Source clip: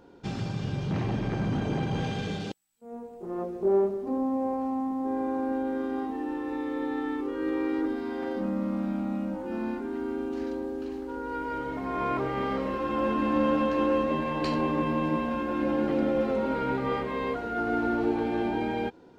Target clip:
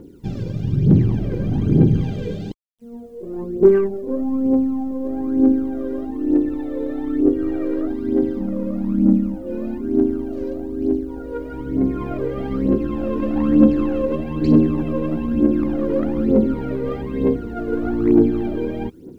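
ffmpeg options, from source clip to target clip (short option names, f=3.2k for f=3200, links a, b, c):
-af "lowshelf=f=550:t=q:w=1.5:g=13.5,acrusher=bits=9:mix=0:aa=0.000001,aeval=exprs='0.944*(cos(1*acos(clip(val(0)/0.944,-1,1)))-cos(1*PI/2))+0.0299*(cos(4*acos(clip(val(0)/0.944,-1,1)))-cos(4*PI/2))+0.0668*(cos(5*acos(clip(val(0)/0.944,-1,1)))-cos(5*PI/2))+0.0422*(cos(6*acos(clip(val(0)/0.944,-1,1)))-cos(6*PI/2))+0.0376*(cos(7*acos(clip(val(0)/0.944,-1,1)))-cos(7*PI/2))':c=same,aphaser=in_gain=1:out_gain=1:delay=2.1:decay=0.69:speed=1.1:type=triangular,volume=-7.5dB"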